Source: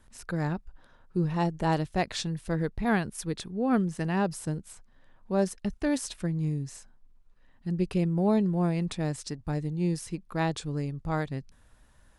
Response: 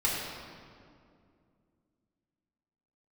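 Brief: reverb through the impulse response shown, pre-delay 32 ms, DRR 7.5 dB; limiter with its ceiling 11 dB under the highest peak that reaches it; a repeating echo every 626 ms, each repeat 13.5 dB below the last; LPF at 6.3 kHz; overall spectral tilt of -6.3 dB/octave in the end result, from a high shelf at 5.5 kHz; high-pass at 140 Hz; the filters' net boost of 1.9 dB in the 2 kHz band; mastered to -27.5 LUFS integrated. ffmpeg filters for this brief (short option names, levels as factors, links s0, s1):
-filter_complex "[0:a]highpass=140,lowpass=6300,equalizer=f=2000:t=o:g=3,highshelf=f=5500:g=-5.5,alimiter=level_in=1.26:limit=0.0631:level=0:latency=1,volume=0.794,aecho=1:1:626|1252:0.211|0.0444,asplit=2[s0][s1];[1:a]atrim=start_sample=2205,adelay=32[s2];[s1][s2]afir=irnorm=-1:irlink=0,volume=0.133[s3];[s0][s3]amix=inputs=2:normalize=0,volume=2.37"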